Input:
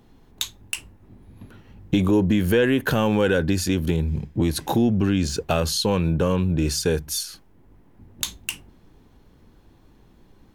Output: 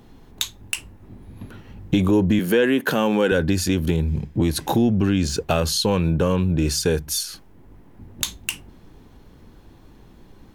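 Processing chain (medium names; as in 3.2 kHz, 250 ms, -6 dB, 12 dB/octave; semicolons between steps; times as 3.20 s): 2.39–3.32 s: high-pass 170 Hz 24 dB/octave; in parallel at -0.5 dB: compression, threshold -34 dBFS, peak gain reduction 17.5 dB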